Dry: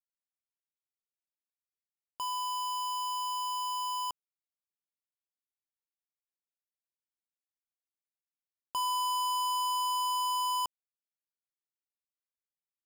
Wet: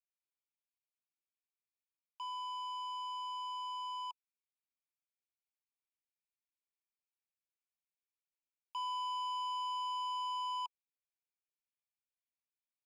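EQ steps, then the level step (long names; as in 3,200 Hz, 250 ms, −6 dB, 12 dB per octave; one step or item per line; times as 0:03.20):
pair of resonant band-passes 1,500 Hz, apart 1.3 octaves
high-frequency loss of the air 77 metres
first difference
+12.5 dB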